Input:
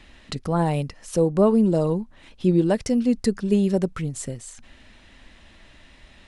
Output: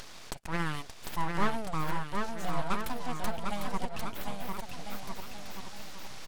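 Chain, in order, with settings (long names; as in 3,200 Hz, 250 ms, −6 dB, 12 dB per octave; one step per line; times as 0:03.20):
high-pass filter 520 Hz 12 dB per octave
upward compression, threshold −30 dBFS
full-wave rectification
bouncing-ball delay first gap 750 ms, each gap 0.8×, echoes 5
highs frequency-modulated by the lows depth 0.17 ms
level −3.5 dB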